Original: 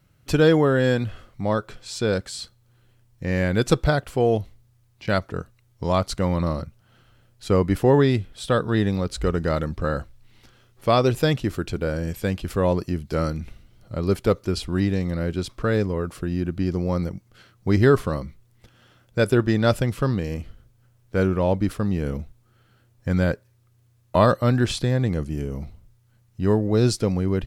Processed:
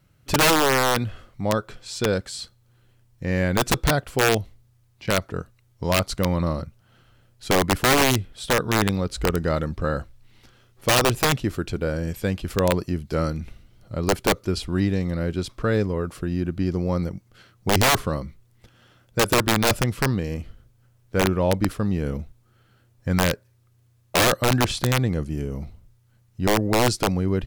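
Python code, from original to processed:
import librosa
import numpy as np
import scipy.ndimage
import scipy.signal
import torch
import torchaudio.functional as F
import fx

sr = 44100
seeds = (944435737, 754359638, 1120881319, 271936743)

y = (np.mod(10.0 ** (11.5 / 20.0) * x + 1.0, 2.0) - 1.0) / 10.0 ** (11.5 / 20.0)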